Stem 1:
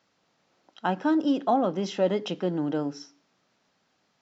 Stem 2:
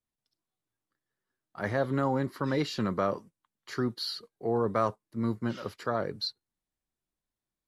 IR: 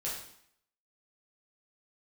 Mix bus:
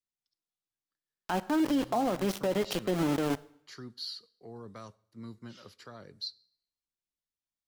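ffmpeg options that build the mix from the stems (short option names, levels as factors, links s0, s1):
-filter_complex "[0:a]aeval=exprs='val(0)*gte(abs(val(0)),0.0316)':c=same,adelay=450,volume=1.33,asplit=2[s0][s1];[s1]volume=0.0944[s2];[1:a]equalizer=f=5000:w=0.52:g=9.5,acrossover=split=260|3000[s3][s4][s5];[s4]acompressor=threshold=0.0112:ratio=2[s6];[s3][s6][s5]amix=inputs=3:normalize=0,volume=0.211,asplit=2[s7][s8];[s8]volume=0.0794[s9];[2:a]atrim=start_sample=2205[s10];[s2][s9]amix=inputs=2:normalize=0[s11];[s11][s10]afir=irnorm=-1:irlink=0[s12];[s0][s7][s12]amix=inputs=3:normalize=0,alimiter=limit=0.0944:level=0:latency=1:release=102"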